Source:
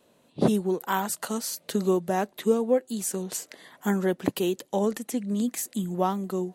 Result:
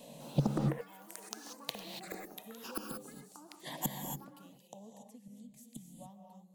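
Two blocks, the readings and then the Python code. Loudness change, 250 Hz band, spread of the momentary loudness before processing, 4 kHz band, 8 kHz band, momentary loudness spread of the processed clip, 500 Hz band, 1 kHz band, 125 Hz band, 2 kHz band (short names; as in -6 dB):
-12.0 dB, -14.5 dB, 7 LU, -8.0 dB, -14.0 dB, 19 LU, -20.0 dB, -16.0 dB, -5.0 dB, -13.5 dB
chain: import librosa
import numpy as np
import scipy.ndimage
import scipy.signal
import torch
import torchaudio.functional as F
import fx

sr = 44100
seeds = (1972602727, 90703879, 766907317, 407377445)

y = fx.gate_flip(x, sr, shuts_db=-28.0, range_db=-39)
y = fx.peak_eq(y, sr, hz=140.0, db=14.5, octaves=0.29)
y = fx.fixed_phaser(y, sr, hz=370.0, stages=6)
y = fx.rev_gated(y, sr, seeds[0], gate_ms=310, shape='rising', drr_db=3.0)
y = fx.echo_pitch(y, sr, ms=201, semitones=7, count=3, db_per_echo=-3.0)
y = y * 10.0 ** (12.0 / 20.0)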